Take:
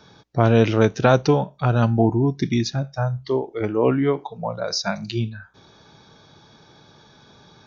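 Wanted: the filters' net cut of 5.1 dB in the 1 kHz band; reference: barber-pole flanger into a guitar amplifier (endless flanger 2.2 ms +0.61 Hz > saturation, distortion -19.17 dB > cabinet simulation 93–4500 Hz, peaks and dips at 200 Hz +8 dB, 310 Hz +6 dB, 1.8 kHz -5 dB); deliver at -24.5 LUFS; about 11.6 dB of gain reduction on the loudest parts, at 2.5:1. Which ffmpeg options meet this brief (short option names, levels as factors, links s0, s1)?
-filter_complex "[0:a]equalizer=f=1000:t=o:g=-7.5,acompressor=threshold=0.0316:ratio=2.5,asplit=2[s0][s1];[s1]adelay=2.2,afreqshift=0.61[s2];[s0][s2]amix=inputs=2:normalize=1,asoftclip=threshold=0.0596,highpass=93,equalizer=f=200:t=q:w=4:g=8,equalizer=f=310:t=q:w=4:g=6,equalizer=f=1800:t=q:w=4:g=-5,lowpass=f=4500:w=0.5412,lowpass=f=4500:w=1.3066,volume=2.66"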